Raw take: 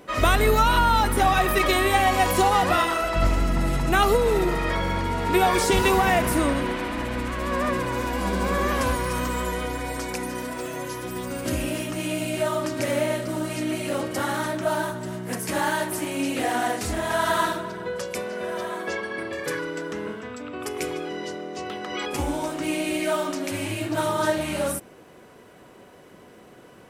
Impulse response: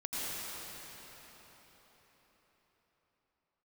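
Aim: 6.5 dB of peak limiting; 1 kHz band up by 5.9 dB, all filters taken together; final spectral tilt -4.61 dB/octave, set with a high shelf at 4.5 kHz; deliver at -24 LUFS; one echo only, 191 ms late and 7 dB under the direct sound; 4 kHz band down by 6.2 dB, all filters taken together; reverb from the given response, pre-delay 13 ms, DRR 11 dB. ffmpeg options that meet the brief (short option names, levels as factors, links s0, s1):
-filter_complex "[0:a]equalizer=f=1000:t=o:g=8,equalizer=f=4000:t=o:g=-7,highshelf=f=4500:g=-4,alimiter=limit=0.299:level=0:latency=1,aecho=1:1:191:0.447,asplit=2[s0][s1];[1:a]atrim=start_sample=2205,adelay=13[s2];[s1][s2]afir=irnorm=-1:irlink=0,volume=0.15[s3];[s0][s3]amix=inputs=2:normalize=0,volume=0.794"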